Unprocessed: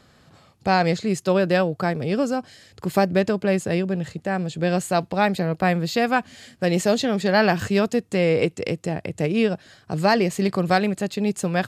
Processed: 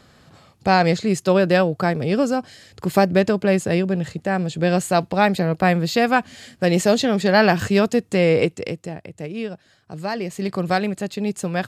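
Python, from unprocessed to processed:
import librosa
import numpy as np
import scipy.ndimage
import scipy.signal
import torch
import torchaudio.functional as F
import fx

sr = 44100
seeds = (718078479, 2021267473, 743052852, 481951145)

y = fx.gain(x, sr, db=fx.line((8.38, 3.0), (9.09, -8.0), (10.12, -8.0), (10.6, -1.0)))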